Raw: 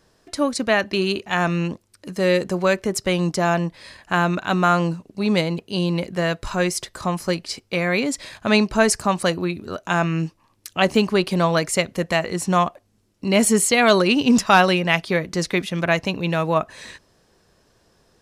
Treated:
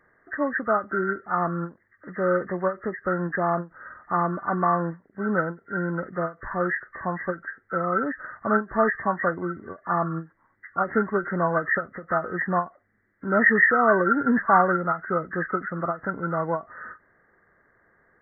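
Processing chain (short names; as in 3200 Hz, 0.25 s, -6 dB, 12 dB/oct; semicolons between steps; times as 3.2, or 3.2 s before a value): nonlinear frequency compression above 1100 Hz 4:1; low shelf 180 Hz -7.5 dB; ending taper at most 260 dB/s; gain -3.5 dB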